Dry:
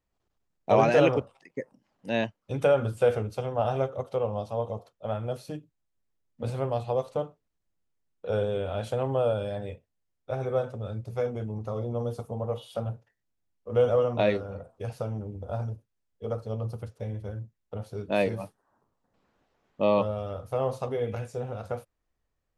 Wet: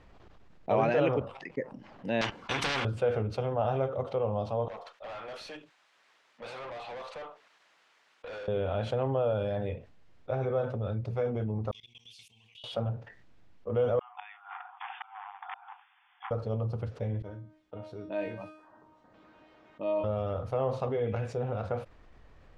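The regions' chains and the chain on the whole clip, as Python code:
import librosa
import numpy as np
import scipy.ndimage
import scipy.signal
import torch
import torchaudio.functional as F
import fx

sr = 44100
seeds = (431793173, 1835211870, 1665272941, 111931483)

y = fx.chain(x, sr, fx.leveller(passes=2),
    fx.notch_comb(f0_hz=630.0),
    fx.spectral_comp(ratio=10.0), at=(2.21, 2.85))
y = fx.chain(y, sr, fx.highpass(hz=1000.0, slope=12),
    fx.tube_stage(drive_db=49.0, bias=0.25), at=(4.68, 8.48))
y = fx.chain(y, sr, fx.ellip_highpass(hz=2600.0, order=4, stop_db=50),
    fx.peak_eq(hz=5700.0, db=-3.0, octaves=1.8),
    fx.level_steps(step_db=23), at=(11.71, 12.64))
y = fx.chain(y, sr, fx.gate_flip(shuts_db=-21.0, range_db=-33),
    fx.overload_stage(gain_db=35.5),
    fx.brickwall_bandpass(low_hz=720.0, high_hz=3600.0), at=(13.99, 16.31))
y = fx.chain(y, sr, fx.highpass(hz=110.0, slope=6),
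    fx.comb_fb(f0_hz=310.0, decay_s=0.36, harmonics='all', damping=0.0, mix_pct=90), at=(17.22, 20.04))
y = scipy.signal.sosfilt(scipy.signal.butter(2, 3200.0, 'lowpass', fs=sr, output='sos'), y)
y = fx.env_flatten(y, sr, amount_pct=50)
y = y * 10.0 ** (-6.5 / 20.0)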